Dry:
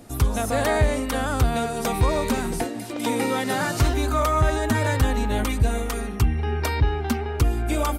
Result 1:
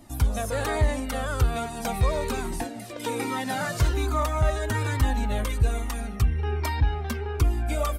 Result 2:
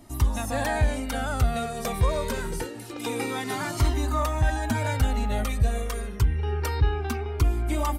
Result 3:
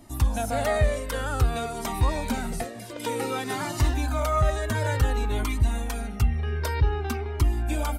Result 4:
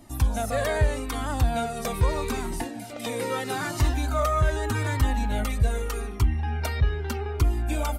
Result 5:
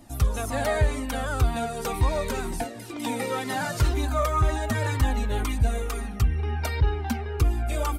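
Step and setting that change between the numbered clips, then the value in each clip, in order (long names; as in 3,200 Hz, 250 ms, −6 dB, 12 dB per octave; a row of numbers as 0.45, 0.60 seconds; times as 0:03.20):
flanger whose copies keep moving one way, speed: 1.2, 0.26, 0.54, 0.8, 2 Hertz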